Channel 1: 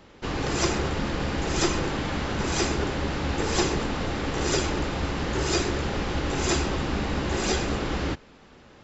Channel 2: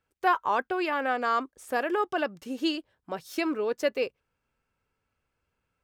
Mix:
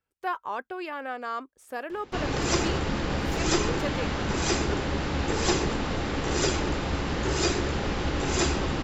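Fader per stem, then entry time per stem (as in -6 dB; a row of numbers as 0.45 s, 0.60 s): -0.5 dB, -6.5 dB; 1.90 s, 0.00 s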